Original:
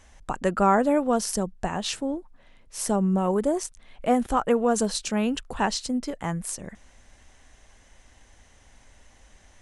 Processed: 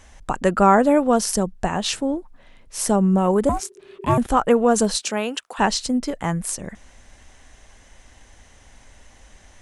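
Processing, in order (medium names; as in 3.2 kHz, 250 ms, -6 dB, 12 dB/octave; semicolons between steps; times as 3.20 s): 3.49–4.18 s: ring modulator 390 Hz; 4.96–5.58 s: high-pass 220 Hz -> 820 Hz 12 dB/octave; trim +5.5 dB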